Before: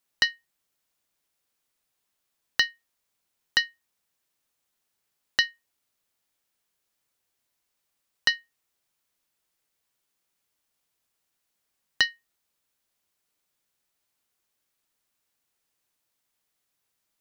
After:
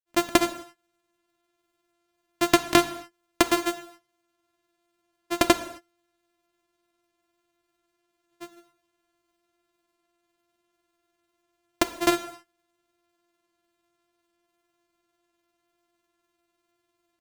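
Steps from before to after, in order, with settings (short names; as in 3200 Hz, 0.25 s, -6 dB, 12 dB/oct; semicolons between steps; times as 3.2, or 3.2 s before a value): sample sorter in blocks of 128 samples; grains 0.1 s, grains 20/s, spray 0.196 s, pitch spread up and down by 0 st; non-linear reverb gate 0.29 s falling, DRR 11 dB; gain +4.5 dB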